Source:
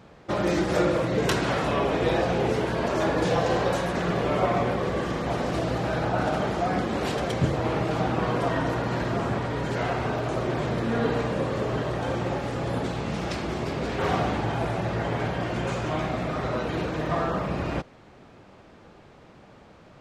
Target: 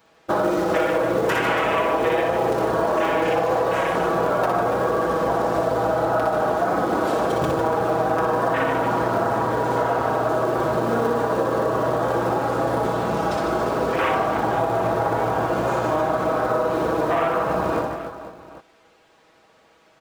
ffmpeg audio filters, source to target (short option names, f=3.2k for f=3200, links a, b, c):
-filter_complex "[0:a]afwtdn=0.0316,aemphasis=mode=production:type=75kf,asplit=2[a][b];[b]aeval=exprs='(mod(4.22*val(0)+1,2)-1)/4.22':c=same,volume=-10.5dB[c];[a][c]amix=inputs=2:normalize=0,bass=f=250:g=-12,treble=f=4k:g=-5,acrossover=split=470[d][e];[d]acrusher=bits=4:mode=log:mix=0:aa=0.000001[f];[e]aecho=1:1:6.2:0.87[g];[f][g]amix=inputs=2:normalize=0,aecho=1:1:60|150|285|487.5|791.2:0.631|0.398|0.251|0.158|0.1,acompressor=threshold=-24dB:ratio=6,volume=6.5dB"